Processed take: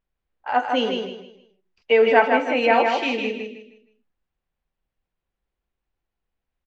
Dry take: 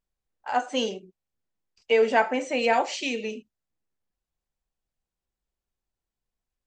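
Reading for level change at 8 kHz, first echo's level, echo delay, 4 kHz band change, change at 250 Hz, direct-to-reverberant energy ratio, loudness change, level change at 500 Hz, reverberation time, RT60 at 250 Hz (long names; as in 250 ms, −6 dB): can't be measured, −4.5 dB, 156 ms, +3.5 dB, +5.5 dB, no reverb audible, +5.5 dB, +5.5 dB, no reverb audible, no reverb audible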